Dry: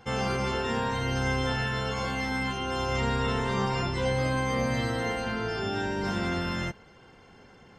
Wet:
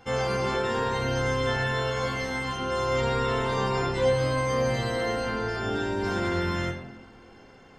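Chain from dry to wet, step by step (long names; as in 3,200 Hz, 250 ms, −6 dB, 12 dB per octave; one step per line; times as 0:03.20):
parametric band 170 Hz −6 dB 0.42 octaves
on a send: convolution reverb RT60 1.1 s, pre-delay 3 ms, DRR 2 dB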